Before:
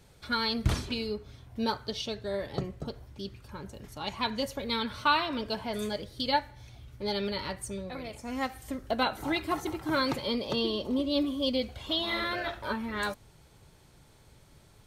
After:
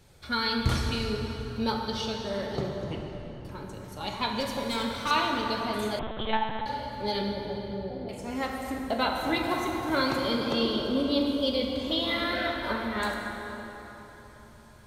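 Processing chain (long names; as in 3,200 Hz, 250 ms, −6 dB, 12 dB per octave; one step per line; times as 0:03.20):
0:02.69: tape stop 0.76 s
0:04.40–0:05.11: hard clipping −27 dBFS, distortion −17 dB
0:07.21–0:08.09: Butterworth low-pass 720 Hz
dense smooth reverb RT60 4 s, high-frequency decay 0.6×, DRR 0 dB
0:05.99–0:06.66: one-pitch LPC vocoder at 8 kHz 220 Hz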